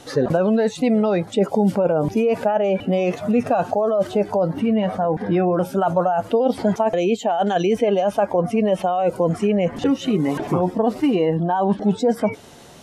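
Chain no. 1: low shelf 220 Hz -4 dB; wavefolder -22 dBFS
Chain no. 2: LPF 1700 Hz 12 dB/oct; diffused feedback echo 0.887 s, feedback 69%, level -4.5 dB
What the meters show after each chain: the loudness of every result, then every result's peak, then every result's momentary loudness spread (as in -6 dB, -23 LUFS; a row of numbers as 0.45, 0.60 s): -28.0, -18.0 LUFS; -22.0, -4.0 dBFS; 2, 2 LU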